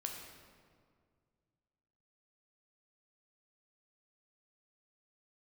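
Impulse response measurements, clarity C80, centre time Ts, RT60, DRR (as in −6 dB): 5.0 dB, 59 ms, 2.0 s, 1.0 dB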